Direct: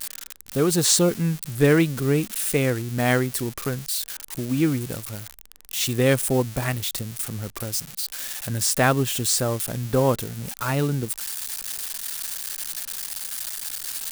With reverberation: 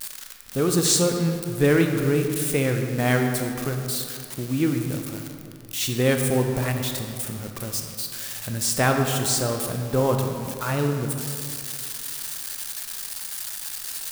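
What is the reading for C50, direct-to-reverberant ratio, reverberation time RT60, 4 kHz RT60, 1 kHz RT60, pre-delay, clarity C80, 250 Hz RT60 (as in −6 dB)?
4.5 dB, 3.5 dB, 2.5 s, 1.4 s, 2.5 s, 19 ms, 5.5 dB, 2.5 s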